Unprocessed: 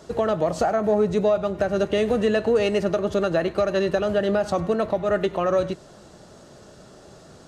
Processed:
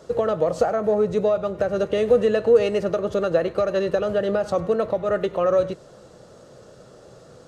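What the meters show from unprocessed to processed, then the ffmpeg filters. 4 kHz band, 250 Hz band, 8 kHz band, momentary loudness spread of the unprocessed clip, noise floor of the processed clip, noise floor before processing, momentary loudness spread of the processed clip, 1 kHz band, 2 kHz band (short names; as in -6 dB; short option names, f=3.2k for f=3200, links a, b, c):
-3.5 dB, -2.5 dB, n/a, 3 LU, -48 dBFS, -48 dBFS, 6 LU, -1.5 dB, -3.0 dB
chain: -af "equalizer=f=125:t=o:w=0.33:g=6,equalizer=f=500:t=o:w=0.33:g=12,equalizer=f=1.25k:t=o:w=0.33:g=4,volume=-3.5dB"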